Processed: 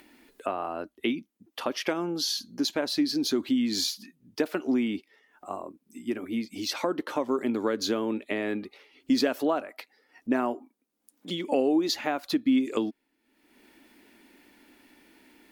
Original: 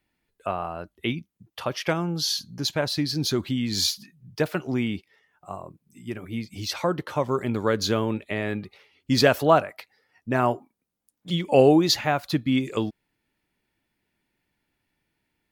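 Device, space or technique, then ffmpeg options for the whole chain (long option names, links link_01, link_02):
upward and downward compression: -af "acompressor=mode=upward:threshold=-42dB:ratio=2.5,acompressor=threshold=-26dB:ratio=4,lowshelf=frequency=190:width_type=q:width=3:gain=-11"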